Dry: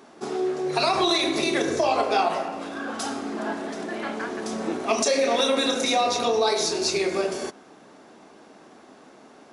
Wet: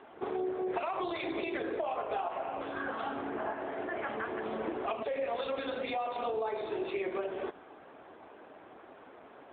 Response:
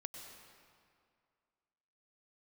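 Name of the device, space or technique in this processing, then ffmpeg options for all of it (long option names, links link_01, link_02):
voicemail: -filter_complex "[0:a]asettb=1/sr,asplit=3[link_01][link_02][link_03];[link_01]atrim=end=3.294[link_04];[link_02]atrim=start=3.29:end=4.09,asetpts=PTS-STARTPTS,afade=type=in:duration=0.004:curve=qsin,afade=type=out:start_time=0.796:duration=0.004:curve=qsin,bass=frequency=250:gain=-6,treble=frequency=4000:gain=-13[link_05];[link_03]atrim=start=4.086[link_06];[link_04][link_05]acrossfade=duration=0.004:curve1=hsin:curve2=qsin[link_07];[link_07][link_06]acrossfade=duration=0.004:curve1=qsin:curve2=hsin,highpass=350,lowpass=3000,acompressor=threshold=-31dB:ratio=6" -ar 8000 -c:a libopencore_amrnb -b:a 7950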